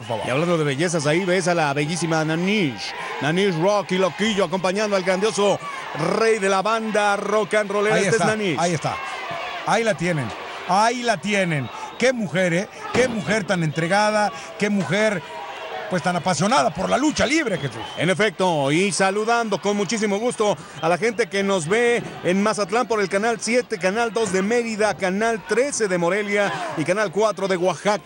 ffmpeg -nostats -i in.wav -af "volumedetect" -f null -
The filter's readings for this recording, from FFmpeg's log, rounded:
mean_volume: -21.0 dB
max_volume: -8.0 dB